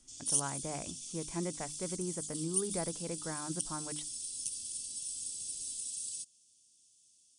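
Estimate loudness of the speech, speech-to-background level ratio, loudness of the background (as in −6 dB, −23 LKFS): −41.0 LKFS, −3.5 dB, −37.5 LKFS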